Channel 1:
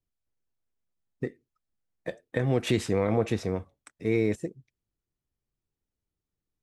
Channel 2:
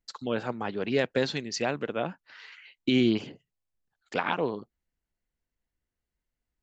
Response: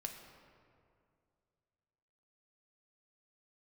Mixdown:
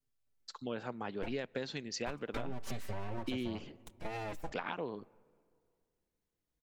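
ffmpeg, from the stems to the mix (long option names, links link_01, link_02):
-filter_complex "[0:a]acompressor=threshold=-33dB:ratio=2.5,aeval=exprs='abs(val(0))':channel_layout=same,asplit=2[link_01][link_02];[link_02]adelay=4.6,afreqshift=-0.42[link_03];[link_01][link_03]amix=inputs=2:normalize=1,volume=2dB,asplit=2[link_04][link_05];[link_05]volume=-16.5dB[link_06];[1:a]adelay=400,volume=-7dB,asplit=2[link_07][link_08];[link_08]volume=-21.5dB[link_09];[2:a]atrim=start_sample=2205[link_10];[link_06][link_09]amix=inputs=2:normalize=0[link_11];[link_11][link_10]afir=irnorm=-1:irlink=0[link_12];[link_04][link_07][link_12]amix=inputs=3:normalize=0,acompressor=threshold=-34dB:ratio=6"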